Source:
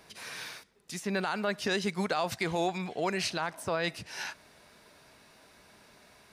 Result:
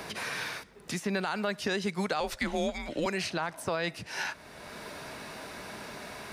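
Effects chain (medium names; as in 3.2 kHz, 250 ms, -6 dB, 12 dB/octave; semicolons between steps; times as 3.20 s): 2.20–3.06 s: frequency shift -140 Hz; three bands compressed up and down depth 70%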